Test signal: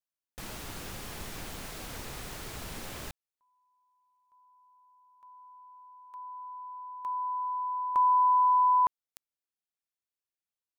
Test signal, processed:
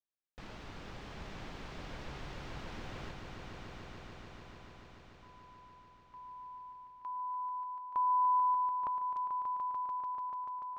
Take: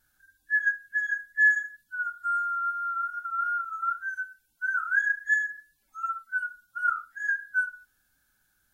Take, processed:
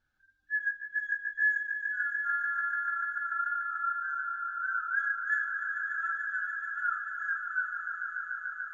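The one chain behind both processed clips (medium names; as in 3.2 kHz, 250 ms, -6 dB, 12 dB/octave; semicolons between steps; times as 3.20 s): distance through air 180 m; echo with a slow build-up 146 ms, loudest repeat 5, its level -9 dB; trim -5 dB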